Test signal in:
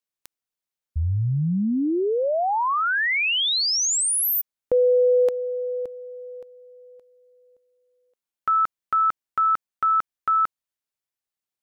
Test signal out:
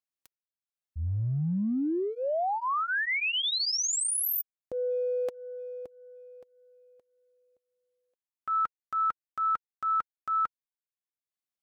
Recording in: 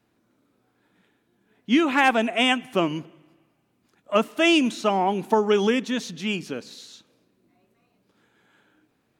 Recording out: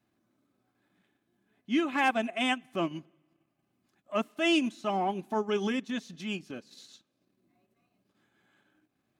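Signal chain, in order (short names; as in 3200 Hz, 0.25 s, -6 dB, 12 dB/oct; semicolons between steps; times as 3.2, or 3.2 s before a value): transient shaper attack -5 dB, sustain -9 dB; notch comb 470 Hz; gain -5.5 dB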